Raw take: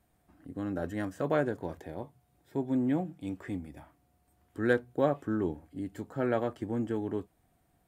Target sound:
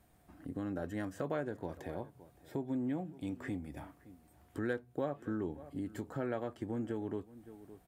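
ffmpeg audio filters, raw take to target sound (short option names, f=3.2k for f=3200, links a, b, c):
-filter_complex "[0:a]asplit=2[a][b];[b]adelay=565.6,volume=-24dB,highshelf=f=4k:g=-12.7[c];[a][c]amix=inputs=2:normalize=0,acompressor=threshold=-43dB:ratio=2.5,volume=4dB"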